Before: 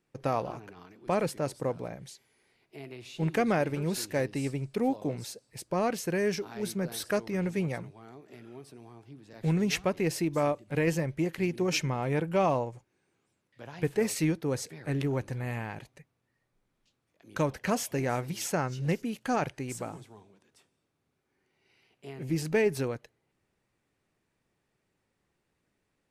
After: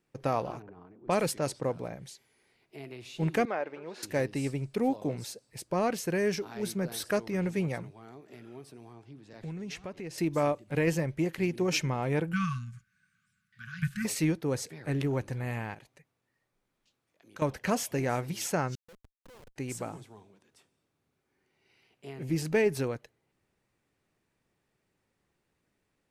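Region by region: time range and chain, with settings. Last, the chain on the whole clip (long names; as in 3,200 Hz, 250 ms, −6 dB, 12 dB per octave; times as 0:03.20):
0:00.62–0:01.64: low-pass that shuts in the quiet parts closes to 650 Hz, open at −26 dBFS + high-shelf EQ 3,100 Hz +8 dB
0:03.45–0:04.03: high-pass filter 560 Hz + head-to-tape spacing loss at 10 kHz 29 dB
0:08.93–0:10.18: low-pass filter 9,000 Hz + downward compressor 2.5 to 1, threshold −42 dBFS
0:12.33–0:14.05: hollow resonant body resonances 320/960/1,500 Hz, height 16 dB, ringing for 35 ms + dynamic equaliser 1,800 Hz, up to −5 dB, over −38 dBFS, Q 1.3 + linear-phase brick-wall band-stop 220–1,100 Hz
0:15.74–0:17.42: low-shelf EQ 230 Hz −6.5 dB + downward compressor 1.5 to 1, threshold −59 dBFS
0:18.75–0:19.56: downward compressor, threshold −35 dBFS + pair of resonant band-passes 730 Hz, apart 0.95 octaves + comparator with hysteresis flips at −48 dBFS
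whole clip: no processing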